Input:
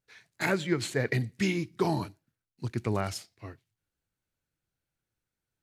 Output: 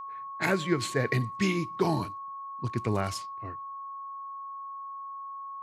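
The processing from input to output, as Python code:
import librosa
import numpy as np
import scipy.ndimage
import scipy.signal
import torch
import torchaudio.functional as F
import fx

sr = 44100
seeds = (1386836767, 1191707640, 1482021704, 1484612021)

y = fx.env_lowpass(x, sr, base_hz=1200.0, full_db=-28.0)
y = y + 10.0 ** (-38.0 / 20.0) * np.sin(2.0 * np.pi * 1100.0 * np.arange(len(y)) / sr)
y = y * librosa.db_to_amplitude(1.0)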